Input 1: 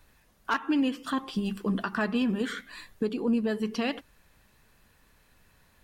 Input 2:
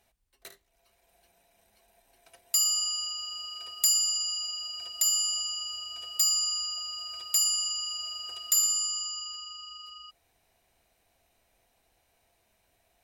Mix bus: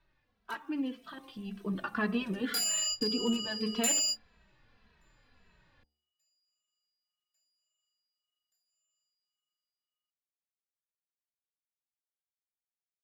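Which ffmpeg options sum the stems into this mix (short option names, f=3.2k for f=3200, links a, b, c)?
-filter_complex "[0:a]lowpass=f=4.5k:w=0.5412,lowpass=f=4.5k:w=1.3066,afade=t=in:st=1.46:d=0.59:silence=0.398107,asplit=2[a][b];[1:a]equalizer=f=1k:w=2.8:g=-14,asplit=2[c][d];[d]highpass=f=720:p=1,volume=18dB,asoftclip=type=tanh:threshold=-9dB[e];[c][e]amix=inputs=2:normalize=0,lowpass=f=7.6k:p=1,volume=-6dB,acrusher=bits=10:mix=0:aa=0.000001,volume=-8dB[f];[b]apad=whole_len=575042[g];[f][g]sidechaingate=range=-51dB:threshold=-52dB:ratio=16:detection=peak[h];[a][h]amix=inputs=2:normalize=0,bandreject=f=73.79:t=h:w=4,bandreject=f=147.58:t=h:w=4,bandreject=f=221.37:t=h:w=4,bandreject=f=295.16:t=h:w=4,bandreject=f=368.95:t=h:w=4,bandreject=f=442.74:t=h:w=4,bandreject=f=516.53:t=h:w=4,bandreject=f=590.32:t=h:w=4,bandreject=f=664.11:t=h:w=4,bandreject=f=737.9:t=h:w=4,bandreject=f=811.69:t=h:w=4,bandreject=f=885.48:t=h:w=4,aeval=exprs='0.126*(abs(mod(val(0)/0.126+3,4)-2)-1)':c=same,asplit=2[i][j];[j]adelay=2.7,afreqshift=-1.8[k];[i][k]amix=inputs=2:normalize=1"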